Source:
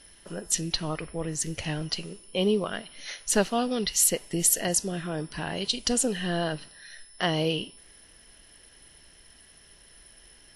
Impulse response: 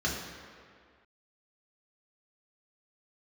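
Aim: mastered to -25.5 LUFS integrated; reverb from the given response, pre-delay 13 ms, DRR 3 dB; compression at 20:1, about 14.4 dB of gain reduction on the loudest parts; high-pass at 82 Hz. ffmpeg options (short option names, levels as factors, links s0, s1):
-filter_complex "[0:a]highpass=82,acompressor=threshold=0.0251:ratio=20,asplit=2[s0][s1];[1:a]atrim=start_sample=2205,adelay=13[s2];[s1][s2]afir=irnorm=-1:irlink=0,volume=0.251[s3];[s0][s3]amix=inputs=2:normalize=0,volume=2.99"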